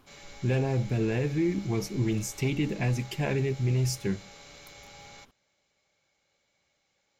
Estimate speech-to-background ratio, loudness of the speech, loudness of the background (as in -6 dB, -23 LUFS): 19.5 dB, -29.0 LUFS, -48.5 LUFS